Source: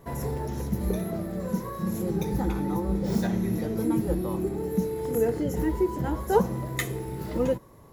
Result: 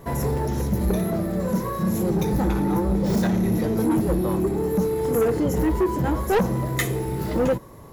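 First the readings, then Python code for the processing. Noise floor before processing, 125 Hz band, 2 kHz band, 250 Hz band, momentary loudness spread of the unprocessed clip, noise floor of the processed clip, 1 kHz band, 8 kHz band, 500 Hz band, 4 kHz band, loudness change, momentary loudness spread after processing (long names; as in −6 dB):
−50 dBFS, +6.0 dB, +6.0 dB, +5.5 dB, 6 LU, −42 dBFS, +5.0 dB, +5.5 dB, +4.5 dB, +5.5 dB, +5.0 dB, 4 LU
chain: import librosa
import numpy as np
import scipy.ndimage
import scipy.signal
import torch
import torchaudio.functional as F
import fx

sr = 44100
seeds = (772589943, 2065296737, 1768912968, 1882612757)

y = 10.0 ** (-23.5 / 20.0) * np.tanh(x / 10.0 ** (-23.5 / 20.0))
y = F.gain(torch.from_numpy(y), 8.0).numpy()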